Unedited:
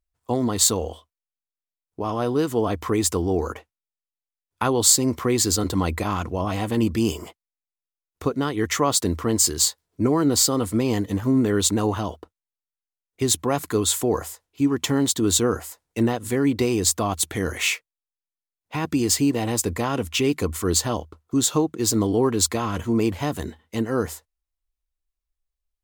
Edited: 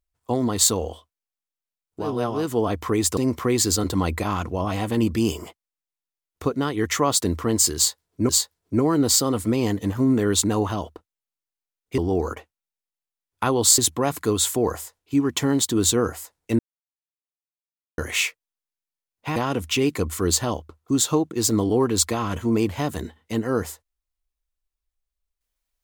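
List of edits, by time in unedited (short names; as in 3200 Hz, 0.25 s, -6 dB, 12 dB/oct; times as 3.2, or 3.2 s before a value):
2.09–2.37 reverse, crossfade 0.24 s
3.17–4.97 move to 13.25
9.56–10.09 loop, 2 plays
16.06–17.45 mute
18.83–19.79 cut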